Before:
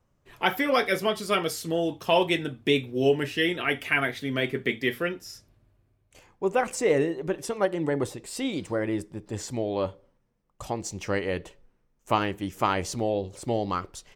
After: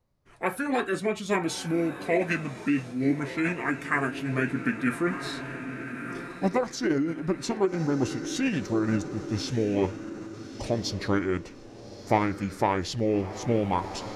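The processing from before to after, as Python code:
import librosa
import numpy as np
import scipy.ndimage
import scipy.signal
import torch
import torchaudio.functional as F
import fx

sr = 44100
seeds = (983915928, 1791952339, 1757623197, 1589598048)

y = fx.echo_diffused(x, sr, ms=1245, feedback_pct=45, wet_db=-13)
y = fx.rider(y, sr, range_db=4, speed_s=0.5)
y = fx.formant_shift(y, sr, semitones=-5)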